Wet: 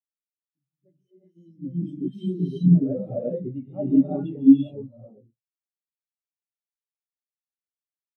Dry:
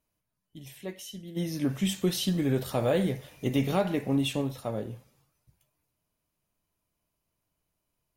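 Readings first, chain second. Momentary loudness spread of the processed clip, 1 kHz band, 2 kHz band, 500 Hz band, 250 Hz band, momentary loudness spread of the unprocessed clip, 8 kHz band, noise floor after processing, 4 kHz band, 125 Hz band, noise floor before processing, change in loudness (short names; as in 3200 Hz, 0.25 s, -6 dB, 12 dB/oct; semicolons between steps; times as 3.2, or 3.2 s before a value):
17 LU, n/a, under -25 dB, -1.5 dB, +8.5 dB, 15 LU, under -30 dB, under -85 dBFS, under -15 dB, +5.0 dB, -82 dBFS, +7.0 dB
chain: non-linear reverb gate 0.43 s rising, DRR -5.5 dB; flange 0.59 Hz, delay 7.6 ms, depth 5 ms, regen +66%; spectral expander 2.5:1; gain +8.5 dB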